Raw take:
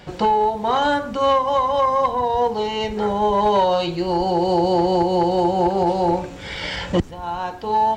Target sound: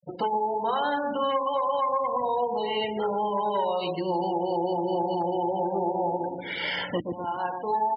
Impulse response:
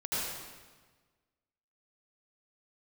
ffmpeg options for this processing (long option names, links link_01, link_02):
-filter_complex "[0:a]asplit=2[link_01][link_02];[link_02]adelay=121,lowpass=frequency=990:poles=1,volume=-5dB,asplit=2[link_03][link_04];[link_04]adelay=121,lowpass=frequency=990:poles=1,volume=0.44,asplit=2[link_05][link_06];[link_06]adelay=121,lowpass=frequency=990:poles=1,volume=0.44,asplit=2[link_07][link_08];[link_08]adelay=121,lowpass=frequency=990:poles=1,volume=0.44,asplit=2[link_09][link_10];[link_10]adelay=121,lowpass=frequency=990:poles=1,volume=0.44[link_11];[link_01][link_03][link_05][link_07][link_09][link_11]amix=inputs=6:normalize=0,acompressor=threshold=-19dB:ratio=10,flanger=delay=5.6:depth=2.4:regen=-60:speed=1.2:shape=sinusoidal,afftfilt=real='re*gte(hypot(re,im),0.0224)':imag='im*gte(hypot(re,im),0.0224)':win_size=1024:overlap=0.75,adynamicequalizer=threshold=0.00562:dfrequency=2500:dqfactor=0.82:tfrequency=2500:tqfactor=0.82:attack=5:release=100:ratio=0.375:range=3:mode=boostabove:tftype=bell,highpass=200,highshelf=frequency=4900:gain=-10.5"